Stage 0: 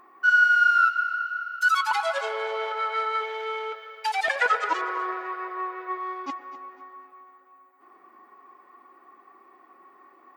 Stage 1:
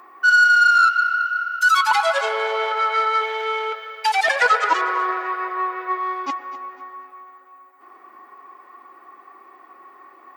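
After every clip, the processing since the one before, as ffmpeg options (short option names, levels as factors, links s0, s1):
-filter_complex "[0:a]highpass=f=430:p=1,acrossover=split=1100|3400[s0][s1][s2];[s1]asoftclip=type=tanh:threshold=0.0668[s3];[s0][s3][s2]amix=inputs=3:normalize=0,volume=2.66"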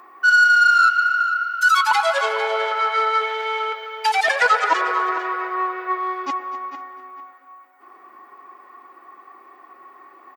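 -filter_complex "[0:a]asplit=2[s0][s1];[s1]adelay=449,lowpass=f=4000:p=1,volume=0.282,asplit=2[s2][s3];[s3]adelay=449,lowpass=f=4000:p=1,volume=0.23,asplit=2[s4][s5];[s5]adelay=449,lowpass=f=4000:p=1,volume=0.23[s6];[s0][s2][s4][s6]amix=inputs=4:normalize=0"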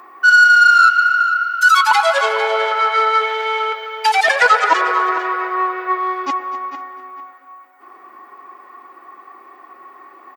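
-af "highpass=53,volume=1.68"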